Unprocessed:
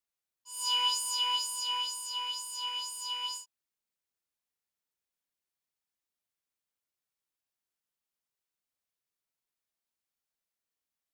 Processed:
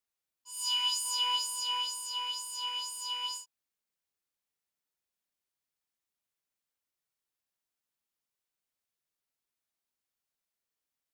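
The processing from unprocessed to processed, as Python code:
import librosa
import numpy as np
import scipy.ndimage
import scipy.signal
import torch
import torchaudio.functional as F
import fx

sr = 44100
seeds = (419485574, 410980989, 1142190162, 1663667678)

y = fx.peak_eq(x, sr, hz=440.0, db=-14.0, octaves=2.2, at=(0.5, 1.04), fade=0.02)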